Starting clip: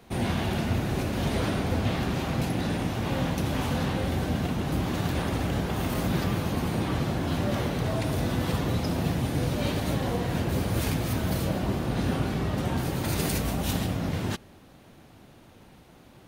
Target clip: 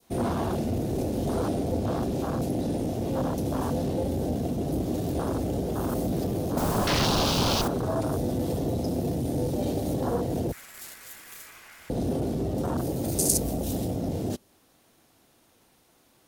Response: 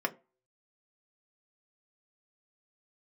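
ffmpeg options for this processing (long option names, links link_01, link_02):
-filter_complex "[0:a]asoftclip=type=tanh:threshold=-24dB,bass=frequency=250:gain=-5,treble=frequency=4000:gain=12,asplit=2[link_01][link_02];[1:a]atrim=start_sample=2205[link_03];[link_02][link_03]afir=irnorm=-1:irlink=0,volume=-16.5dB[link_04];[link_01][link_04]amix=inputs=2:normalize=0,asettb=1/sr,asplit=3[link_05][link_06][link_07];[link_05]atrim=end=6.574[link_08];[link_06]atrim=start=6.57:end=7.68,asetpts=PTS-STARTPTS,afade=type=in:duration=0.004:curve=qsin,afade=type=out:start_time=1.106:duration=0.004:curve=qsin,aeval=exprs='0.0841*sin(PI/2*4.47*val(0)/0.0841)':channel_layout=same[link_09];[link_07]atrim=start=7.676[link_10];[link_08][link_09]acrossfade=duration=0.004:curve1=hsin:curve2=qsin[link_11];[link_11][link_10]acrossfade=duration=0.004:curve1=qsin:curve2=hsin,asettb=1/sr,asplit=3[link_12][link_13][link_14];[link_12]atrim=end=10.524[link_15];[link_13]atrim=start=10.52:end=11.9,asetpts=PTS-STARTPTS,afade=type=in:duration=0.004:curve=qsin,afade=type=out:start_time=1.376:duration=0.004:curve=qsin,aeval=exprs='val(0)*sin(2*PI*1800*n/s)':channel_layout=same[link_16];[link_14]atrim=start=11.896[link_17];[link_15][link_16]acrossfade=duration=0.004:curve1=hsin:curve2=qsin[link_18];[link_18][link_17]acrossfade=duration=0.004:curve1=qsin:curve2=hsin,adynamicequalizer=threshold=0.00631:dfrequency=1700:dqfactor=0.81:tfrequency=1700:tqfactor=0.81:attack=5:release=100:ratio=0.375:range=3:mode=cutabove:tftype=bell,afwtdn=0.0282,volume=5.5dB"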